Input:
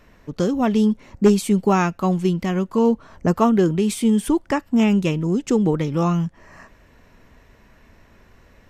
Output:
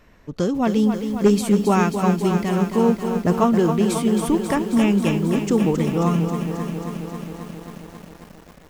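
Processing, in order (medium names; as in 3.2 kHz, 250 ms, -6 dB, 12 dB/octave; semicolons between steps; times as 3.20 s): bit-crushed delay 269 ms, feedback 80%, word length 7-bit, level -7.5 dB; trim -1 dB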